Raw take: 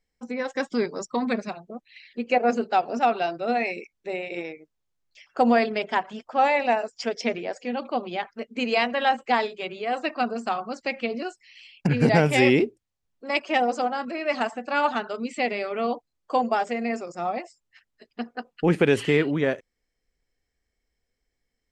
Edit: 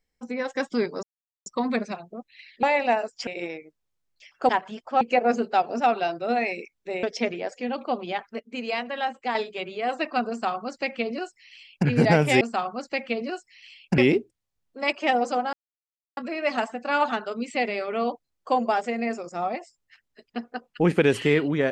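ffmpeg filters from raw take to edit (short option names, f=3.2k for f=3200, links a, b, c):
-filter_complex "[0:a]asplit=12[a][b][c][d][e][f][g][h][i][j][k][l];[a]atrim=end=1.03,asetpts=PTS-STARTPTS,afade=t=out:st=1.026:d=0.004:c=hsin,apad=pad_dur=0.43[m];[b]atrim=start=1.03:end=2.202,asetpts=PTS-STARTPTS,afade=t=in:d=0.004:c=hsin[n];[c]atrim=start=6.428:end=7.072[o];[d]atrim=start=4.218:end=5.442[p];[e]atrim=start=5.908:end=6.432[q];[f]atrim=start=2.198:end=4.222[r];[g]atrim=start=7.068:end=8.442[s];[h]atrim=start=8.438:end=9.392,asetpts=PTS-STARTPTS,volume=-6dB[t];[i]atrim=start=9.388:end=12.452[u];[j]atrim=start=10.338:end=11.912[v];[k]atrim=start=12.448:end=14,asetpts=PTS-STARTPTS,afade=t=out:st=1.548:d=0.004:c=hsin,apad=pad_dur=0.64[w];[l]atrim=start=14,asetpts=PTS-STARTPTS,afade=t=in:d=0.004:c=hsin[x];[m][n]concat=n=2:v=0:a=1[y];[y][o]acrossfade=d=0.004:c1=hsin:c2=hsin[z];[z][p]acrossfade=d=0.004:c1=hsin:c2=hsin[aa];[aa][q]acrossfade=d=0.004:c1=hsin:c2=hsin[ab];[ab][r]acrossfade=d=0.004:c1=hsin:c2=hsin[ac];[ac][s]acrossfade=d=0.004:c1=hsin:c2=hsin[ad];[ad][t]acrossfade=d=0.004:c1=hsin:c2=hsin[ae];[ae][u]acrossfade=d=0.004:c1=hsin:c2=hsin[af];[af][v]acrossfade=d=0.004:c1=hsin:c2=hsin[ag];[w][x]concat=n=2:v=0:a=1[ah];[ag][ah]acrossfade=d=0.004:c1=hsin:c2=hsin"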